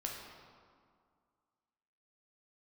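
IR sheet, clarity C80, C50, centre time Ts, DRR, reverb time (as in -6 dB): 3.5 dB, 2.0 dB, 77 ms, -1.5 dB, 2.1 s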